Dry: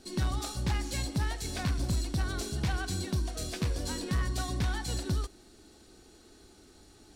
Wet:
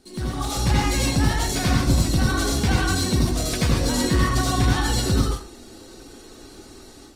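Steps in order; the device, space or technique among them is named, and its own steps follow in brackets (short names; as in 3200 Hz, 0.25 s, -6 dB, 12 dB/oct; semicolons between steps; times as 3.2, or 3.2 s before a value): speakerphone in a meeting room (reverb RT60 0.40 s, pre-delay 74 ms, DRR -3 dB; AGC gain up to 8.5 dB; Opus 24 kbps 48000 Hz)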